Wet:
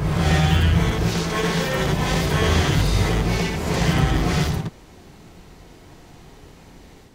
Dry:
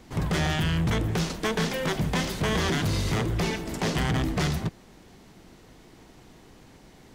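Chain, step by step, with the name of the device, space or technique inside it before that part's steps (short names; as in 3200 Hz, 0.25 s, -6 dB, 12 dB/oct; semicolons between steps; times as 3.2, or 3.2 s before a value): reverse reverb (reverse; reverb RT60 0.95 s, pre-delay 54 ms, DRR -4.5 dB; reverse)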